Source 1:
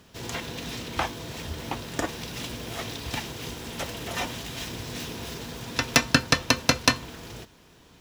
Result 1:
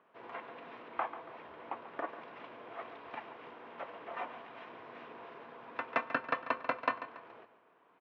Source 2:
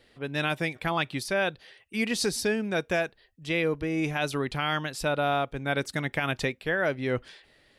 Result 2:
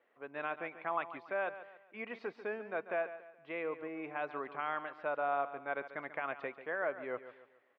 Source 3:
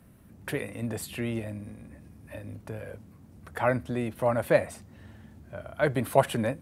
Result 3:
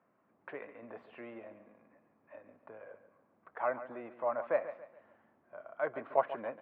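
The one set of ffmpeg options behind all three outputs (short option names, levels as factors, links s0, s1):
-af "highpass=450,equalizer=f=670:t=q:w=4:g=3,equalizer=f=1100:t=q:w=4:g=6,equalizer=f=1800:t=q:w=4:g=-3,lowpass=f=2100:w=0.5412,lowpass=f=2100:w=1.3066,aecho=1:1:141|282|423|564:0.224|0.0851|0.0323|0.0123,volume=0.376"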